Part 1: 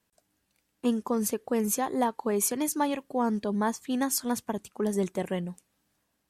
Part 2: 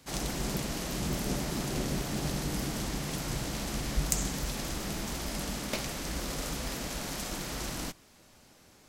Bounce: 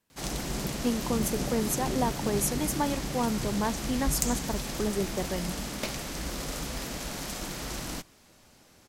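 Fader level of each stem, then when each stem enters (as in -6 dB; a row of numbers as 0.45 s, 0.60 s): -2.0 dB, +0.5 dB; 0.00 s, 0.10 s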